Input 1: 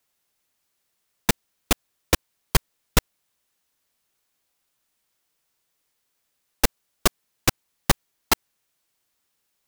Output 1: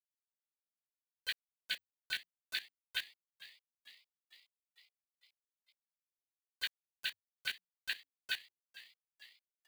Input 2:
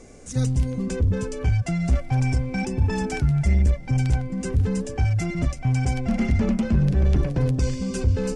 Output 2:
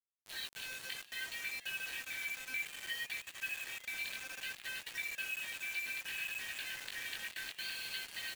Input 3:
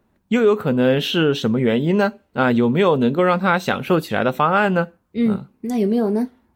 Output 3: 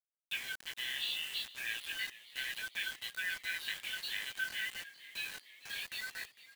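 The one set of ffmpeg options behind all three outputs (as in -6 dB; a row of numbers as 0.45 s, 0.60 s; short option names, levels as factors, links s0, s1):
-filter_complex "[0:a]afftfilt=real='real(if(between(b,1,1008),(2*floor((b-1)/24)+1)*24-b,b),0)':imag='imag(if(between(b,1,1008),(2*floor((b-1)/24)+1)*24-b,b),0)*if(between(b,1,1008),-1,1)':win_size=2048:overlap=0.75,afftfilt=real='re*between(b*sr/4096,1500,4600)':imag='im*between(b*sr/4096,1500,4600)':win_size=4096:overlap=0.75,bandreject=f=2100:w=10,acompressor=threshold=0.00562:ratio=4,flanger=delay=16.5:depth=5.3:speed=0.61,acrusher=bits=8:mix=0:aa=0.000001,asplit=7[s0][s1][s2][s3][s4][s5][s6];[s1]adelay=453,afreqshift=89,volume=0.133[s7];[s2]adelay=906,afreqshift=178,volume=0.0851[s8];[s3]adelay=1359,afreqshift=267,volume=0.0543[s9];[s4]adelay=1812,afreqshift=356,volume=0.0351[s10];[s5]adelay=2265,afreqshift=445,volume=0.0224[s11];[s6]adelay=2718,afreqshift=534,volume=0.0143[s12];[s0][s7][s8][s9][s10][s11][s12]amix=inputs=7:normalize=0,volume=2.82"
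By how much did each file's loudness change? -15.5 LU, -16.5 LU, -20.0 LU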